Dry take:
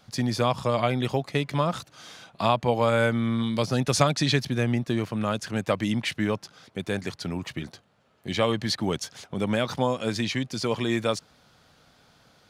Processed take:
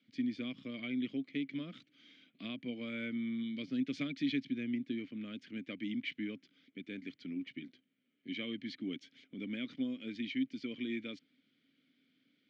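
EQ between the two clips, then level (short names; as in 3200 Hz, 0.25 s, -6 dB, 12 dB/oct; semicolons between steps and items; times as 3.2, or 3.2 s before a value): vowel filter i; BPF 120–5200 Hz; -1.5 dB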